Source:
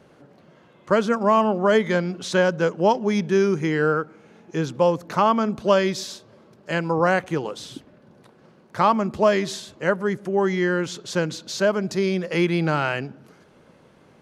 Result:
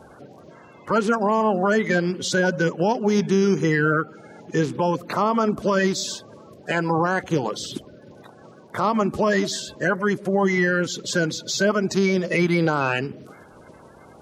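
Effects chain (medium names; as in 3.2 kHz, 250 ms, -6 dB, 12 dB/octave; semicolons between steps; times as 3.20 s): coarse spectral quantiser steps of 30 dB; in parallel at -1 dB: compression, threshold -31 dBFS, peak gain reduction 17 dB; on the sum: peak limiter -12 dBFS, peak gain reduction 8.5 dB; trim +1.5 dB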